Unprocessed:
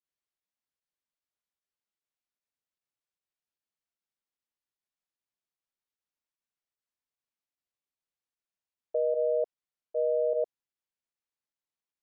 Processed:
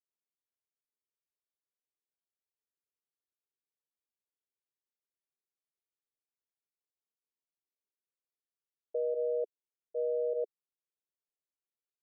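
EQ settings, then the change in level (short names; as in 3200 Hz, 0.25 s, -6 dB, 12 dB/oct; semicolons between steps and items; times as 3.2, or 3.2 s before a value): band-pass 410 Hz, Q 3; 0.0 dB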